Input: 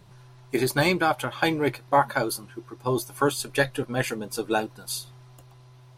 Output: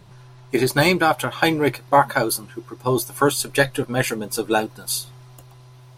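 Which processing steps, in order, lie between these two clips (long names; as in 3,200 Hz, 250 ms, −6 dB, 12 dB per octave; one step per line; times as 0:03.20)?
high-shelf EQ 8,400 Hz −3 dB, from 0:00.75 +5 dB
level +5 dB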